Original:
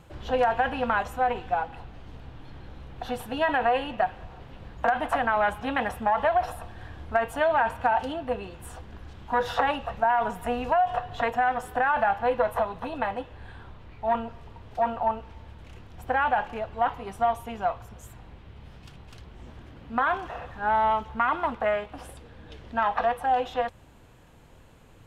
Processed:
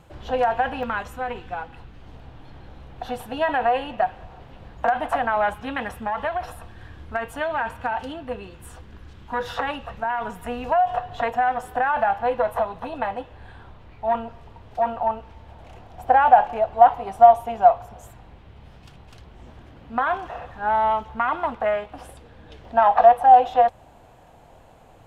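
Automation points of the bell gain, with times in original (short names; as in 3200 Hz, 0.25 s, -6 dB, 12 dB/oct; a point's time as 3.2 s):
bell 720 Hz 0.79 oct
+3 dB
from 0.83 s -6 dB
from 2.02 s +3.5 dB
from 5.54 s -4.5 dB
from 10.64 s +3.5 dB
from 15.49 s +13.5 dB
from 18.11 s +4 dB
from 22.65 s +13.5 dB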